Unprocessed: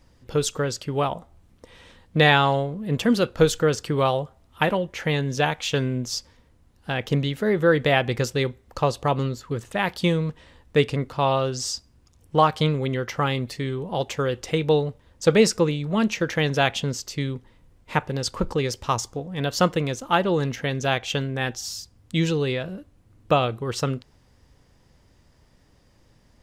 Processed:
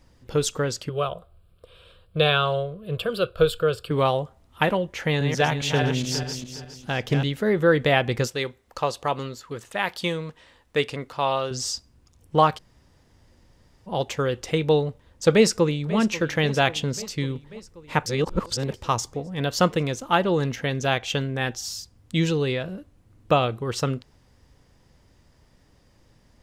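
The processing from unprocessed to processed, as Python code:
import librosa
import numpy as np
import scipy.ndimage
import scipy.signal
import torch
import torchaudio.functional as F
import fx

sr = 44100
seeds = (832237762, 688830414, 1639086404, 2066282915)

y = fx.fixed_phaser(x, sr, hz=1300.0, stages=8, at=(0.89, 3.91))
y = fx.reverse_delay_fb(y, sr, ms=206, feedback_pct=53, wet_db=-5.5, at=(5.0, 7.24))
y = fx.low_shelf(y, sr, hz=320.0, db=-11.5, at=(8.27, 11.51))
y = fx.echo_throw(y, sr, start_s=15.33, length_s=0.64, ms=540, feedback_pct=70, wet_db=-16.0)
y = fx.edit(y, sr, fx.room_tone_fill(start_s=12.58, length_s=1.29, crossfade_s=0.02),
    fx.reverse_span(start_s=18.06, length_s=0.68), tone=tone)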